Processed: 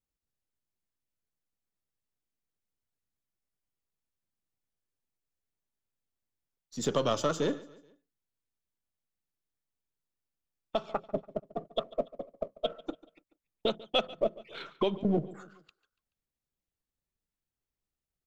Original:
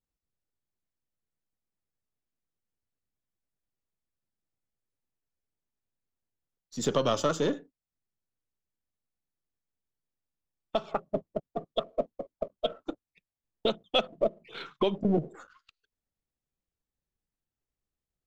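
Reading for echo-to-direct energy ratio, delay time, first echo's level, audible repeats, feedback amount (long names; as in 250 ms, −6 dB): −19.0 dB, 143 ms, −20.0 dB, 3, 46%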